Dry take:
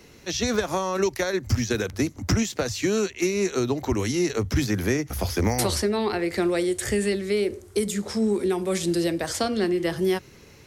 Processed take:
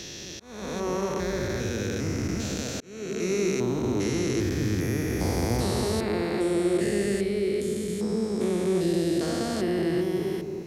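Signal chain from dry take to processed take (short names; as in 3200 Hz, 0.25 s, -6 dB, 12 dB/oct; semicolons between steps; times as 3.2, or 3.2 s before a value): stepped spectrum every 0.4 s; dark delay 0.217 s, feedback 38%, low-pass 750 Hz, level -3 dB; auto swell 0.52 s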